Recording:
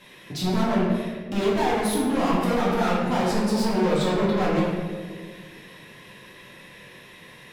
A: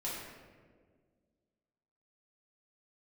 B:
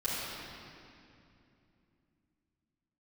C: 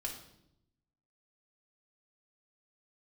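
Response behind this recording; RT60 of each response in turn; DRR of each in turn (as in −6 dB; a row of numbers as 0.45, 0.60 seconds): A; 1.7, 2.7, 0.80 seconds; −7.5, −10.0, −1.0 decibels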